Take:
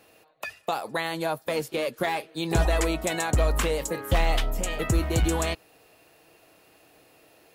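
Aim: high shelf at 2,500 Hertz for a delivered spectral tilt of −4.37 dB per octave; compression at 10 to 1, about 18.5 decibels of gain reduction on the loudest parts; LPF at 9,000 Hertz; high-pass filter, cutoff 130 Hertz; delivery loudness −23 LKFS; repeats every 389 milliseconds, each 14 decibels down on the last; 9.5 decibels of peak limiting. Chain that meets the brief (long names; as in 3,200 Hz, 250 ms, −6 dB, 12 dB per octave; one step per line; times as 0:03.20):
high-pass filter 130 Hz
low-pass filter 9,000 Hz
high-shelf EQ 2,500 Hz −4 dB
downward compressor 10 to 1, threshold −40 dBFS
brickwall limiter −34.5 dBFS
repeating echo 389 ms, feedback 20%, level −14 dB
level +22.5 dB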